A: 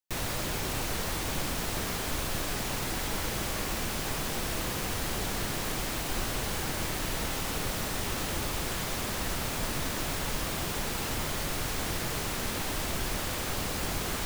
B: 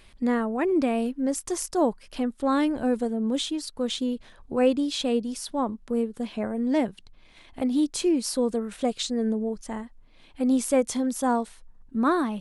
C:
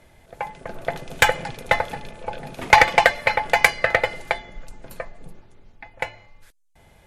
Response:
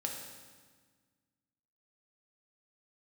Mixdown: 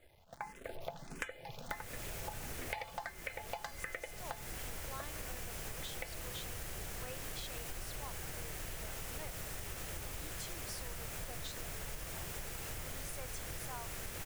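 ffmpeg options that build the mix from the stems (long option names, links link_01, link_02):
-filter_complex "[0:a]equalizer=frequency=250:width_type=o:width=1:gain=-11,equalizer=frequency=1000:width_type=o:width=1:gain=-7,equalizer=frequency=4000:width_type=o:width=1:gain=-7,adelay=1600,volume=-4.5dB[link_01];[1:a]highpass=1000,adelay=2450,volume=-11.5dB[link_02];[2:a]acrusher=bits=8:dc=4:mix=0:aa=0.000001,asplit=2[link_03][link_04];[link_04]afreqshift=1.5[link_05];[link_03][link_05]amix=inputs=2:normalize=1,volume=-7dB[link_06];[link_01][link_02][link_06]amix=inputs=3:normalize=0,acompressor=threshold=-39dB:ratio=10"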